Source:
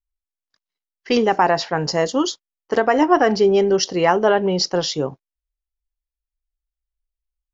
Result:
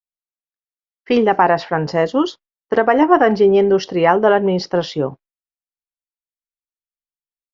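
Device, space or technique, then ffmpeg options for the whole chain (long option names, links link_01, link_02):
hearing-loss simulation: -af "lowpass=2700,agate=range=-33dB:threshold=-39dB:ratio=3:detection=peak,volume=3dB"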